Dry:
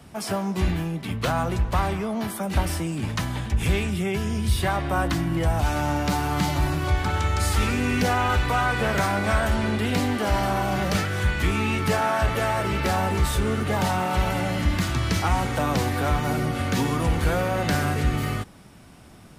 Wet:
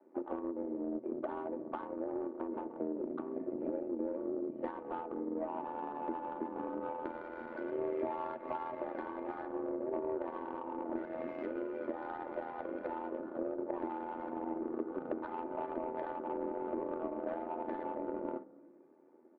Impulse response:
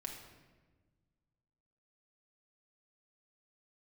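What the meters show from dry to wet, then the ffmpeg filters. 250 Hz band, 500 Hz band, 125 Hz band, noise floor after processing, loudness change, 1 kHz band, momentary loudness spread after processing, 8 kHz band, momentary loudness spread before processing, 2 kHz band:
−12.5 dB, −9.5 dB, −37.5 dB, −58 dBFS, −15.5 dB, −15.0 dB, 4 LU, below −40 dB, 4 LU, −25.0 dB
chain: -filter_complex "[0:a]highpass=frequency=200:width_type=q:width=0.5412,highpass=frequency=200:width_type=q:width=1.307,lowpass=frequency=2200:width_type=q:width=0.5176,lowpass=frequency=2200:width_type=q:width=0.7071,lowpass=frequency=2200:width_type=q:width=1.932,afreqshift=140,afwtdn=0.0398,aecho=1:1:3.4:0.74,acompressor=threshold=-42dB:ratio=6,aemphasis=mode=production:type=50fm,tremolo=f=83:d=0.71,asplit=2[link_01][link_02];[1:a]atrim=start_sample=2205,adelay=8[link_03];[link_02][link_03]afir=irnorm=-1:irlink=0,volume=-6.5dB[link_04];[link_01][link_04]amix=inputs=2:normalize=0,adynamicsmooth=sensitivity=1:basefreq=530,volume=11.5dB"

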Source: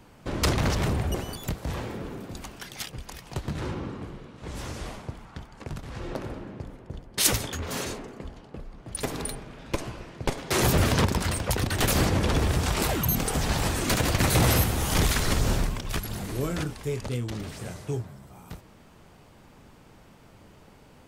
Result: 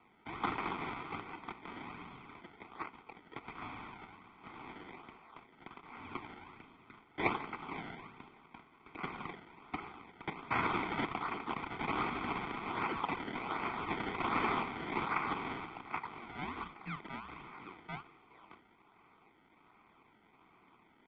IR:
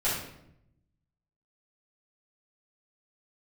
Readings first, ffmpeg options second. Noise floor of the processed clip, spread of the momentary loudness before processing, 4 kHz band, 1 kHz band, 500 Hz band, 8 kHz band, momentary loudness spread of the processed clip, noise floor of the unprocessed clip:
−66 dBFS, 18 LU, −18.0 dB, −4.0 dB, −14.0 dB, below −40 dB, 20 LU, −53 dBFS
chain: -af "acrusher=samples=22:mix=1:aa=0.000001:lfo=1:lforange=22:lforate=1.3,highpass=frequency=580:width_type=q:width=0.5412,highpass=frequency=580:width_type=q:width=1.307,lowpass=frequency=3200:width_type=q:width=0.5176,lowpass=frequency=3200:width_type=q:width=0.7071,lowpass=frequency=3200:width_type=q:width=1.932,afreqshift=-260,aecho=1:1:0.9:0.81,volume=-6dB"

